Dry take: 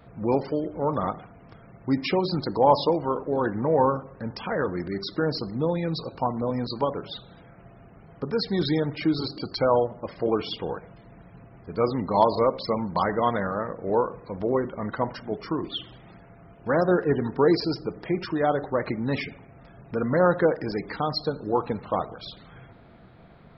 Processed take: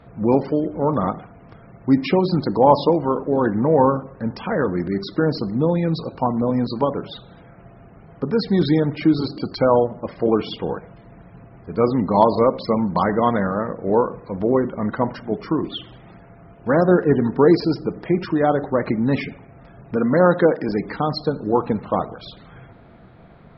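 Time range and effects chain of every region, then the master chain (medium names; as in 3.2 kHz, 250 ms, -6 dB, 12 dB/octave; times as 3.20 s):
19.96–20.69 s: high-pass 150 Hz + peaking EQ 3.6 kHz +10.5 dB 0.54 oct
whole clip: low-pass 3 kHz 6 dB/octave; dynamic bell 220 Hz, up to +5 dB, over -39 dBFS, Q 1.2; trim +4.5 dB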